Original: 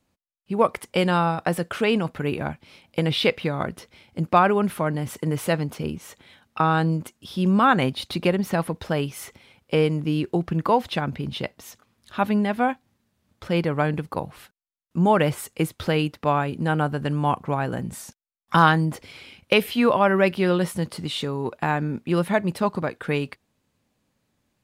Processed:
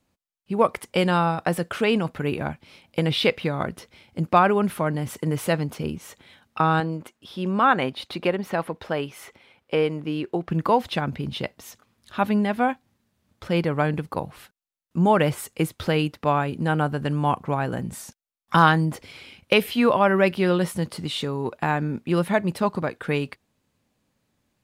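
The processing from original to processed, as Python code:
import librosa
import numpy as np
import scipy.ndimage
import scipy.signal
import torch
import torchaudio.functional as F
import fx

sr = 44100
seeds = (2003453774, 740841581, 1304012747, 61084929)

y = fx.bass_treble(x, sr, bass_db=-9, treble_db=-8, at=(6.8, 10.5))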